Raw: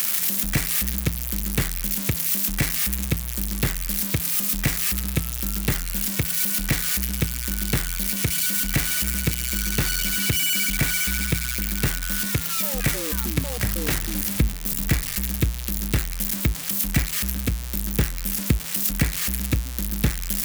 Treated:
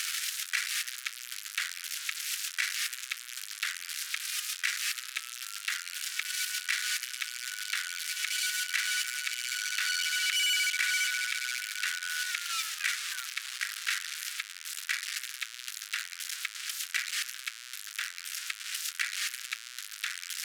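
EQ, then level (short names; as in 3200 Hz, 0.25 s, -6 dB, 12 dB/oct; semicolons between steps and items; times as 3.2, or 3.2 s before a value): elliptic high-pass 1400 Hz, stop band 70 dB; air absorption 63 m; 0.0 dB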